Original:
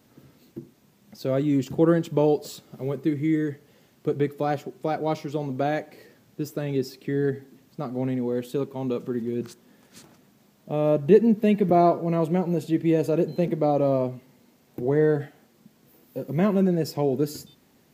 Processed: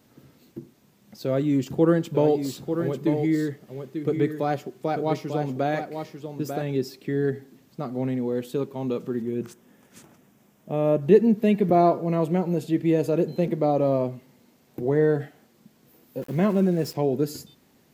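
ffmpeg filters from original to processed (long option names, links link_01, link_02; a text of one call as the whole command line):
ffmpeg -i in.wav -filter_complex "[0:a]asettb=1/sr,asplit=3[link_01][link_02][link_03];[link_01]atrim=end=1.254[link_04];[link_02]atrim=start=1.25:end=6.62,asetpts=PTS-STARTPTS,afade=type=in:duration=0.004:curve=qsin,afade=type=out:start_time=5.366:duration=0.004:curve=qsin,aecho=1:1:894:0.422,atrim=end_sample=236817[link_05];[link_03]atrim=start=6.616[link_06];[link_04][link_05]acrossfade=duration=0.004:curve1=hsin:curve2=qsin[link_07];[link_07][link_06]acrossfade=duration=0.004:curve1=qsin:curve2=hsin,asettb=1/sr,asplit=3[link_08][link_09][link_10];[link_08]atrim=end=9.224[link_11];[link_09]atrim=start=9.22:end=11.02,asetpts=PTS-STARTPTS,afade=type=in:duration=0.004:curve=qsin,afade=type=out:start_time=1.796:duration=0.004:curve=qsin,equalizer=frequency=4300:width_type=o:width=0.43:gain=-9[link_12];[link_10]atrim=start=11.016[link_13];[link_11][link_12]acrossfade=duration=0.004:curve1=hsin:curve2=qsin[link_14];[link_14][link_13]acrossfade=duration=0.004:curve1=qsin:curve2=hsin,asplit=3[link_15][link_16][link_17];[link_15]afade=type=out:start_time=16.21:duration=0.02[link_18];[link_16]aeval=exprs='val(0)*gte(abs(val(0)),0.00944)':channel_layout=same,afade=type=in:start_time=16.21:duration=0.02,afade=type=out:start_time=16.93:duration=0.02[link_19];[link_17]afade=type=in:start_time=16.93:duration=0.02[link_20];[link_18][link_19][link_20]amix=inputs=3:normalize=0" out.wav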